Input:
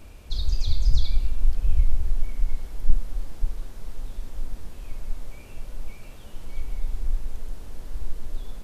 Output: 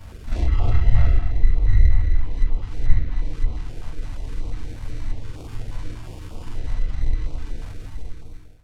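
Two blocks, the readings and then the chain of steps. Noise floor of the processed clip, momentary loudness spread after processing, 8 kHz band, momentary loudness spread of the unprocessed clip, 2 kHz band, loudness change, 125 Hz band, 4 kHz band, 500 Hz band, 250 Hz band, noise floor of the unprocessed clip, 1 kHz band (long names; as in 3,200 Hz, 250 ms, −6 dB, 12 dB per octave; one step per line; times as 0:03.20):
−38 dBFS, 18 LU, can't be measured, 16 LU, +10.0 dB, +6.5 dB, +8.0 dB, −5.0 dB, +8.0 dB, +9.0 dB, −42 dBFS, +9.5 dB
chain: fade-out on the ending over 1.22 s
parametric band 96 Hz +9.5 dB 0.24 octaves
feedback delay network reverb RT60 0.78 s, low-frequency decay 1×, high-frequency decay 0.95×, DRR −6.5 dB
decimation without filtering 22×
treble cut that deepens with the level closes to 2,700 Hz, closed at −12 dBFS
backwards echo 45 ms −7.5 dB
notch on a step sequencer 8.4 Hz 370–1,700 Hz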